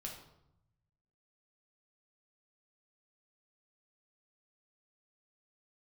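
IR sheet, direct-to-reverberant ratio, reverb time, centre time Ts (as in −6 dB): −1.0 dB, 0.80 s, 31 ms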